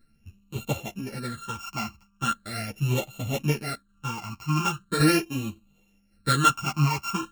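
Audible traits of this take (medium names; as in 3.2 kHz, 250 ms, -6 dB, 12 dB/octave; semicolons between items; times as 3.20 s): a buzz of ramps at a fixed pitch in blocks of 32 samples; phasing stages 8, 0.4 Hz, lowest notch 490–1600 Hz; tremolo saw down 1.8 Hz, depth 50%; a shimmering, thickened sound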